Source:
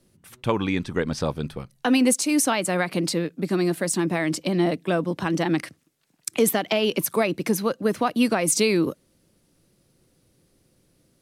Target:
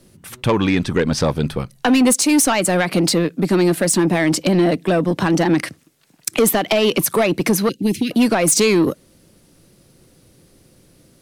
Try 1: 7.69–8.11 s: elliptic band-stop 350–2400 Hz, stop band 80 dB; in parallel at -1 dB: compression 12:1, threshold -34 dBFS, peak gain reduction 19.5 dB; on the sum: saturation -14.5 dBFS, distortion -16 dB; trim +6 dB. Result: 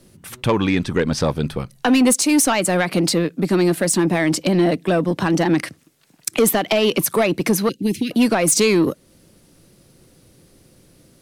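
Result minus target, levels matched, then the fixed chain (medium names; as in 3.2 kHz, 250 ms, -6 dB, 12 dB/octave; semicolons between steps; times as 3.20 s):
compression: peak gain reduction +8.5 dB
7.69–8.11 s: elliptic band-stop 350–2400 Hz, stop band 80 dB; in parallel at -1 dB: compression 12:1, threshold -24.5 dBFS, peak gain reduction 11 dB; on the sum: saturation -14.5 dBFS, distortion -14 dB; trim +6 dB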